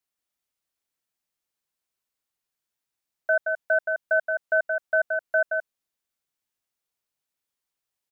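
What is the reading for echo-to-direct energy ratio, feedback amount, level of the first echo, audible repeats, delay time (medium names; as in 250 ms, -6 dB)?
-5.0 dB, no regular repeats, -5.0 dB, 1, 173 ms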